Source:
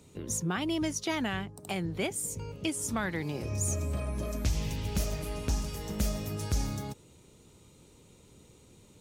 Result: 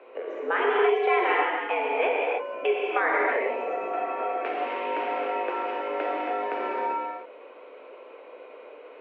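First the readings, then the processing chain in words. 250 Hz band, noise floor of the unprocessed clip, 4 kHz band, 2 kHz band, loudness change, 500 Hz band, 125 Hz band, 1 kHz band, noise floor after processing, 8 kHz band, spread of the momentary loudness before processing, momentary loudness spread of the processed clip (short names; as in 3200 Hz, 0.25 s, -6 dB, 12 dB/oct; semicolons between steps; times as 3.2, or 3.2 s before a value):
-4.5 dB, -58 dBFS, -1.0 dB, +11.5 dB, +6.5 dB, +13.5 dB, under -35 dB, +16.0 dB, -47 dBFS, under -40 dB, 5 LU, 23 LU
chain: non-linear reverb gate 0.34 s flat, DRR -3.5 dB; mistuned SSB +99 Hz 330–2400 Hz; in parallel at +1 dB: compressor, threshold -50 dBFS, peak gain reduction 22.5 dB; on the sum: gain +6.5 dB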